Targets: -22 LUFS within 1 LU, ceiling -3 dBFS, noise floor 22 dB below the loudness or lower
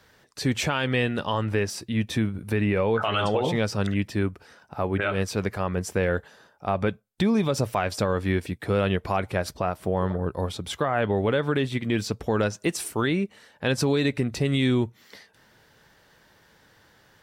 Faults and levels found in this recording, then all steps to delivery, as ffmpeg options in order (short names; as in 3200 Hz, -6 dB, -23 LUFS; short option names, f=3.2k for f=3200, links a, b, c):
loudness -26.0 LUFS; peak -12.0 dBFS; loudness target -22.0 LUFS
-> -af "volume=4dB"